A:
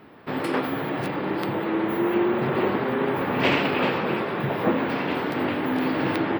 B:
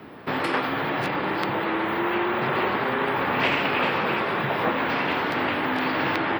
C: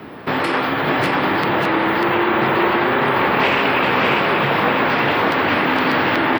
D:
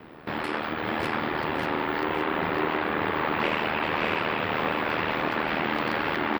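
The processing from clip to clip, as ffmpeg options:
ffmpeg -i in.wav -filter_complex "[0:a]acrossover=split=87|700|3100|7300[link_01][link_02][link_03][link_04][link_05];[link_01]acompressor=threshold=-53dB:ratio=4[link_06];[link_02]acompressor=threshold=-36dB:ratio=4[link_07];[link_03]acompressor=threshold=-28dB:ratio=4[link_08];[link_04]acompressor=threshold=-44dB:ratio=4[link_09];[link_05]acompressor=threshold=-59dB:ratio=4[link_10];[link_06][link_07][link_08][link_09][link_10]amix=inputs=5:normalize=0,volume=6dB" out.wav
ffmpeg -i in.wav -filter_complex "[0:a]asplit=2[link_01][link_02];[link_02]alimiter=limit=-19dB:level=0:latency=1,volume=3dB[link_03];[link_01][link_03]amix=inputs=2:normalize=0,aecho=1:1:594:0.708" out.wav
ffmpeg -i in.wav -af "aecho=1:1:556|1112|1668|2224|2780:0.447|0.179|0.0715|0.0286|0.0114,aeval=exprs='val(0)*sin(2*PI*39*n/s)':channel_layout=same,volume=-8dB" out.wav

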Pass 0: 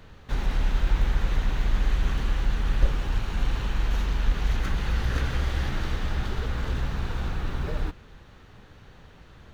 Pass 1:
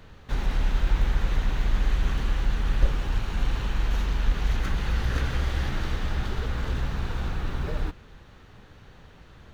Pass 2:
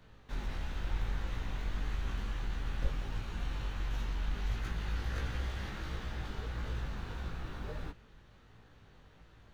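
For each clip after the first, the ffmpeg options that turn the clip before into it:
ffmpeg -i in.wav -af anull out.wav
ffmpeg -i in.wav -filter_complex "[0:a]acrossover=split=550[link_01][link_02];[link_01]aeval=exprs='clip(val(0),-1,0.0531)':channel_layout=same[link_03];[link_03][link_02]amix=inputs=2:normalize=0,flanger=delay=17.5:depth=2.6:speed=1.5,volume=-6.5dB" out.wav

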